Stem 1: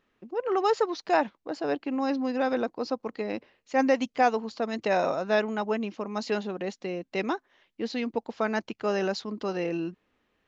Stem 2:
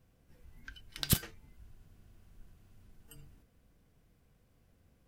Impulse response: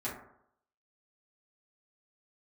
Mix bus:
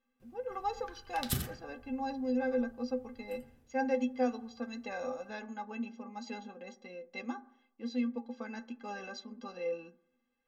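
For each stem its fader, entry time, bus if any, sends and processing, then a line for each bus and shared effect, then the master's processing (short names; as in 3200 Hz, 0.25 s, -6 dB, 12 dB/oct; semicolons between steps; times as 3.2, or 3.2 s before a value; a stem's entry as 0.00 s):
0.0 dB, 0.00 s, send -14 dB, no echo send, metallic resonator 240 Hz, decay 0.21 s, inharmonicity 0.03
+0.5 dB, 0.20 s, send -10.5 dB, echo send -14.5 dB, auto duck -12 dB, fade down 1.75 s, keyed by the first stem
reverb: on, RT60 0.70 s, pre-delay 4 ms
echo: echo 89 ms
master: dry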